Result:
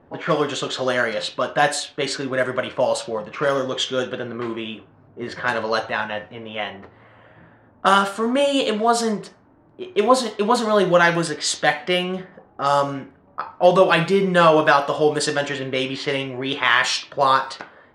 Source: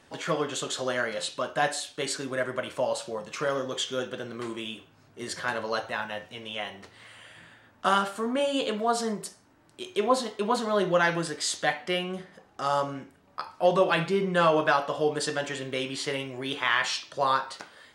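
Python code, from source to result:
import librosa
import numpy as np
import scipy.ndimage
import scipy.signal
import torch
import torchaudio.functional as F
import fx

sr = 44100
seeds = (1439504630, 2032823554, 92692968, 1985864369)

y = fx.env_lowpass(x, sr, base_hz=790.0, full_db=-23.5)
y = y * librosa.db_to_amplitude(8.0)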